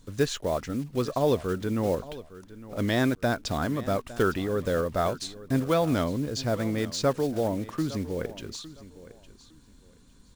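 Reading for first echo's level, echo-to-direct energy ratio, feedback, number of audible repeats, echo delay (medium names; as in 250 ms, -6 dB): -17.0 dB, -17.0 dB, 22%, 2, 859 ms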